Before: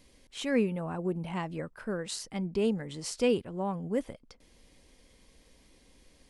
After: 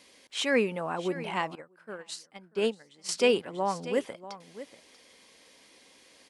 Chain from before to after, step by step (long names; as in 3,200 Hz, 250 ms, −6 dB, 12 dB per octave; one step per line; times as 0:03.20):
meter weighting curve A
single-tap delay 639 ms −14.5 dB
0:01.55–0:03.09: expander for the loud parts 2.5 to 1, over −43 dBFS
level +7 dB